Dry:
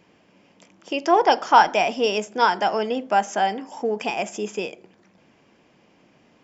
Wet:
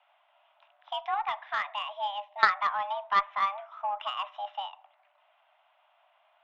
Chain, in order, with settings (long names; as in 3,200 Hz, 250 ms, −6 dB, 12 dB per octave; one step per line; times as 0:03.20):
treble cut that deepens with the level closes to 2,700 Hz, closed at −18.5 dBFS
0:01.05–0:02.43: parametric band 900 Hz −14.5 dB 1 octave
single-sideband voice off tune +400 Hz 230–3,100 Hz
harmonic generator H 3 −14 dB, 4 −44 dB, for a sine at −5 dBFS